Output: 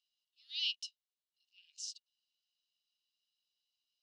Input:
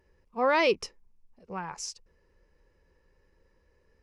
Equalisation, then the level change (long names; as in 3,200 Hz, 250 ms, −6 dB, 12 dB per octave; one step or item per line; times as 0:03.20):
Chebyshev high-pass with heavy ripple 2,800 Hz, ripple 6 dB
high-frequency loss of the air 93 metres
high-shelf EQ 9,000 Hz −10.5 dB
+7.5 dB